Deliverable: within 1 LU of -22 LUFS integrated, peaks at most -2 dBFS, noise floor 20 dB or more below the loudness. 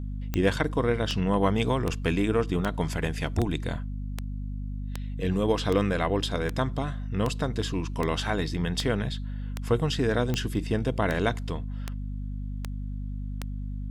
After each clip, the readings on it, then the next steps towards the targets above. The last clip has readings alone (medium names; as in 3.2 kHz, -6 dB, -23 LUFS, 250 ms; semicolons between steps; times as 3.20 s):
clicks found 18; hum 50 Hz; highest harmonic 250 Hz; hum level -30 dBFS; loudness -28.5 LUFS; peak level -9.5 dBFS; loudness target -22.0 LUFS
-> de-click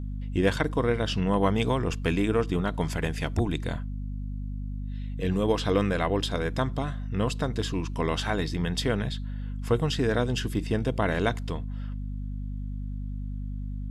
clicks found 0; hum 50 Hz; highest harmonic 250 Hz; hum level -30 dBFS
-> de-hum 50 Hz, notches 5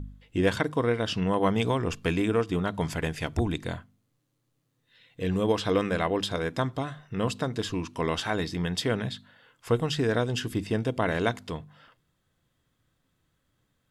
hum not found; loudness -28.5 LUFS; peak level -9.5 dBFS; loudness target -22.0 LUFS
-> trim +6.5 dB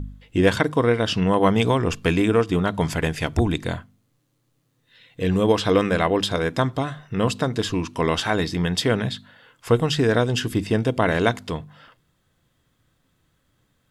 loudness -22.0 LUFS; peak level -3.0 dBFS; noise floor -69 dBFS